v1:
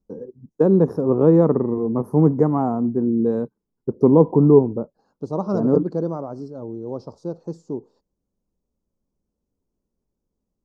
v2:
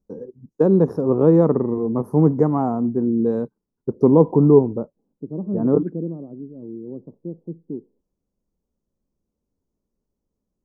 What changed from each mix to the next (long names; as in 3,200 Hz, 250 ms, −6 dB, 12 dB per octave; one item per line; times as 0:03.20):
second voice: add flat-topped band-pass 230 Hz, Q 1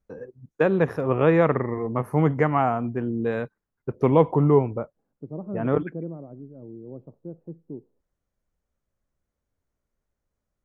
master: remove drawn EQ curve 130 Hz 0 dB, 190 Hz +9 dB, 270 Hz +8 dB, 430 Hz +6 dB, 650 Hz −3 dB, 960 Hz −1 dB, 2,300 Hz −26 dB, 3,400 Hz −17 dB, 4,900 Hz 0 dB, 9,300 Hz −3 dB